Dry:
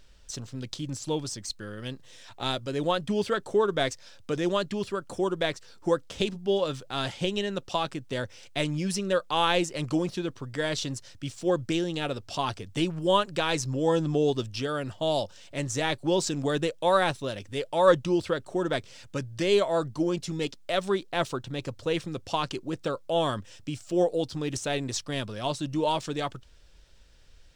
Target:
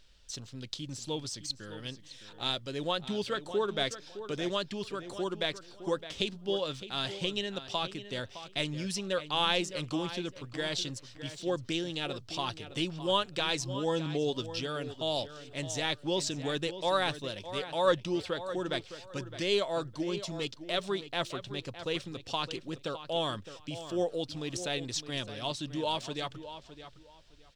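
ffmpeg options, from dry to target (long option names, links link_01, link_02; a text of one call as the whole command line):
ffmpeg -i in.wav -filter_complex "[0:a]equalizer=frequency=3700:width_type=o:width=1.4:gain=7.5,asplit=2[link_01][link_02];[link_02]adelay=612,lowpass=frequency=3800:poles=1,volume=-12dB,asplit=2[link_03][link_04];[link_04]adelay=612,lowpass=frequency=3800:poles=1,volume=0.22,asplit=2[link_05][link_06];[link_06]adelay=612,lowpass=frequency=3800:poles=1,volume=0.22[link_07];[link_01][link_03][link_05][link_07]amix=inputs=4:normalize=0,volume=-7dB" out.wav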